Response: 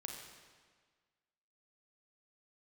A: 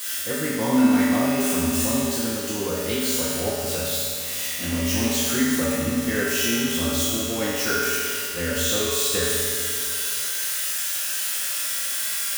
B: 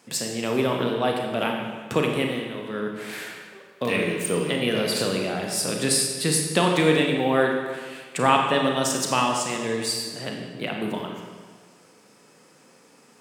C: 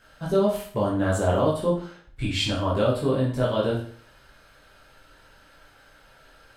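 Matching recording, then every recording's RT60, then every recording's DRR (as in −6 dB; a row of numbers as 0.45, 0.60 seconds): B; 2.4, 1.6, 0.50 seconds; −10.5, 1.0, −6.5 decibels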